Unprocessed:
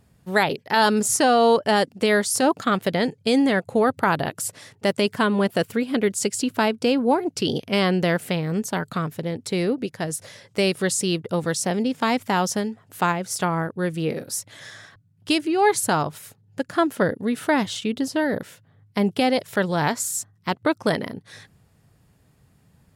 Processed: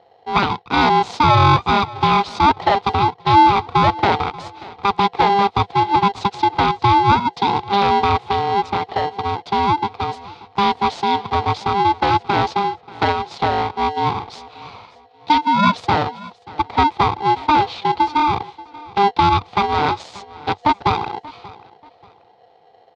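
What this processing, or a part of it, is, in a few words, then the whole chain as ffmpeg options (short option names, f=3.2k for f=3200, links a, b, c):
ring modulator pedal into a guitar cabinet: -af "aeval=exprs='val(0)*sgn(sin(2*PI*600*n/s))':c=same,highpass=77,equalizer=f=880:t=q:w=4:g=9,equalizer=f=1.7k:t=q:w=4:g=-8,equalizer=f=2.8k:t=q:w=4:g=-5,lowpass=f=3.9k:w=0.5412,lowpass=f=3.9k:w=1.3066,equalizer=f=100:t=o:w=0.67:g=7,equalizer=f=630:t=o:w=0.67:g=5,equalizer=f=4k:t=o:w=0.67:g=4,aecho=1:1:584|1168:0.0944|0.0274,volume=1.5dB"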